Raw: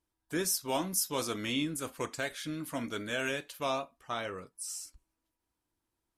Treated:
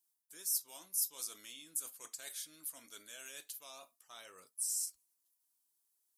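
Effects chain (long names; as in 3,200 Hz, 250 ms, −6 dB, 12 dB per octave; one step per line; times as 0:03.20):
parametric band 2,200 Hz −7.5 dB 2 octaves
reversed playback
downward compressor 6 to 1, threshold −43 dBFS, peak gain reduction 15 dB
reversed playback
first difference
level +9 dB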